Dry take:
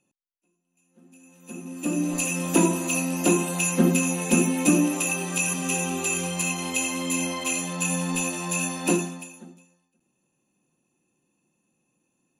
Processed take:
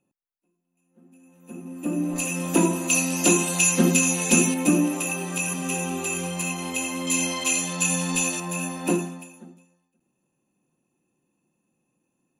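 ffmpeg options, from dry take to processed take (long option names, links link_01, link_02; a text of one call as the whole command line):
ffmpeg -i in.wav -af "asetnsamples=nb_out_samples=441:pad=0,asendcmd='2.16 equalizer g -2;2.9 equalizer g 8;4.54 equalizer g -3.5;7.07 equalizer g 5.5;8.4 equalizer g -6.5',equalizer=frequency=5400:width_type=o:width=2.3:gain=-12" out.wav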